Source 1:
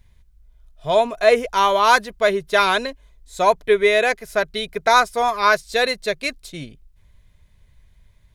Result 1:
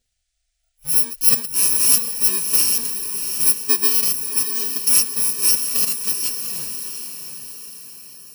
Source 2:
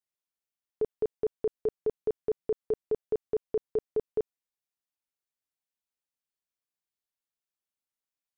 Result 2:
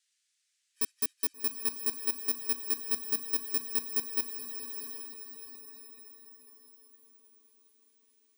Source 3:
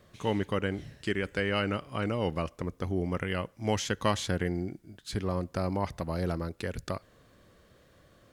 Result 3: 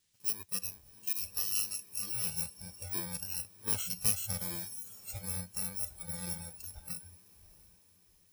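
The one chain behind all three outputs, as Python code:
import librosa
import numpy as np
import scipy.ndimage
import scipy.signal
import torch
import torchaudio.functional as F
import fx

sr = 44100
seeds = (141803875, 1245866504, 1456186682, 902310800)

y = fx.bit_reversed(x, sr, seeds[0], block=64)
y = fx.echo_diffused(y, sr, ms=719, feedback_pct=47, wet_db=-7.0)
y = fx.dmg_noise_band(y, sr, seeds[1], low_hz=1600.0, high_hz=9100.0, level_db=-59.0)
y = fx.high_shelf(y, sr, hz=2300.0, db=8.0)
y = fx.noise_reduce_blind(y, sr, reduce_db=17)
y = fx.peak_eq(y, sr, hz=290.0, db=-5.5, octaves=0.2)
y = F.gain(torch.from_numpy(y), -8.5).numpy()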